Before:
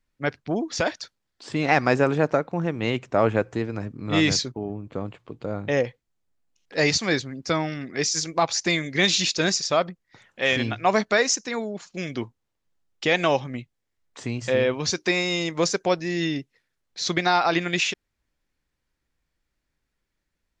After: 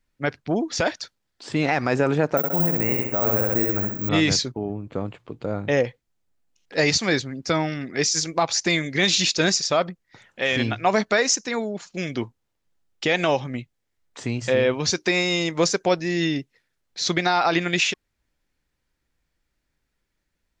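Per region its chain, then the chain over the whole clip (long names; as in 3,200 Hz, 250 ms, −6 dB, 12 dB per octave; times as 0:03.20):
0:02.37–0:04.09: flutter between parallel walls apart 11.1 metres, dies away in 0.74 s + bad sample-rate conversion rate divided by 2×, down filtered, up zero stuff + Butterworth band-reject 3,700 Hz, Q 1.2
whole clip: notch filter 1,100 Hz, Q 25; brickwall limiter −11.5 dBFS; level +2.5 dB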